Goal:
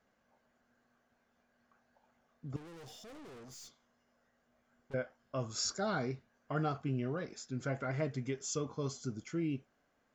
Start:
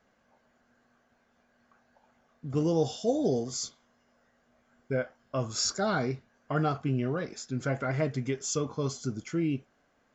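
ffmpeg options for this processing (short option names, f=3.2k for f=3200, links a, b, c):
-filter_complex "[0:a]asettb=1/sr,asplit=3[a][b][c];[a]atrim=end=2.564[d];[b]atrim=start=2.56:end=4.94,asetpts=PTS-STARTPTS,afade=t=in:d=0.004:c=qsin,afade=t=out:st=2.376:d=0.004:c=qsin,aeval=exprs='(tanh(158*val(0)+0.2)-tanh(0.2))/158':c=same[e];[c]atrim=start=4.936[f];[d][e]acrossfade=d=0.004:c1=hsin:c2=qsin[g];[g][f]acrossfade=d=0.004:c1=qsin:c2=hsin,volume=-6.5dB"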